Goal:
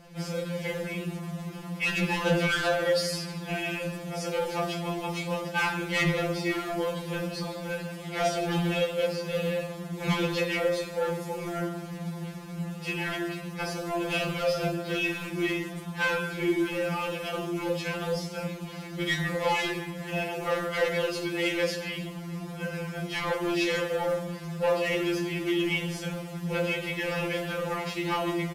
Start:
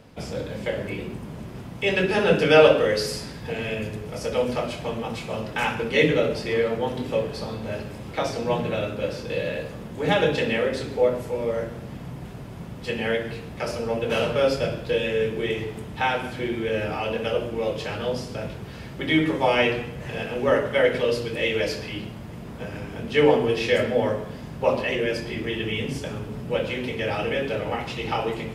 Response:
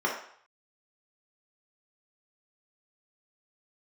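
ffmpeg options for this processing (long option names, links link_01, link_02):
-filter_complex "[0:a]asettb=1/sr,asplit=3[link_01][link_02][link_03];[link_01]atrim=end=7.994[link_04];[link_02]atrim=start=7.99:end=9.06,asetpts=PTS-STARTPTS,afade=type=in:duration=0.004:curve=qsin,afade=type=out:start_time=1.066:duration=0.004:curve=qsin,equalizer=frequency=100:width_type=o:width=0.33:gain=-11,equalizer=frequency=630:width_type=o:width=0.33:gain=6,equalizer=frequency=2000:width_type=o:width=0.33:gain=4,equalizer=frequency=3150:width_type=o:width=0.33:gain=9,equalizer=frequency=8000:width_type=o:width=0.33:gain=5[link_05];[link_03]atrim=start=9.056[link_06];[link_04][link_05]acrossfade=duration=0.004:curve1=hsin:curve2=qsin[link_07];[link_07][link_06]acrossfade=duration=0.004:curve1=qsin:curve2=hsin,acrusher=bits=4:mode=log:mix=0:aa=0.000001,asoftclip=type=tanh:threshold=-21.5dB,aresample=32000,aresample=44100,afftfilt=real='re*2.83*eq(mod(b,8),0)':imag='im*2.83*eq(mod(b,8),0)':win_size=2048:overlap=0.75,volume=2.5dB"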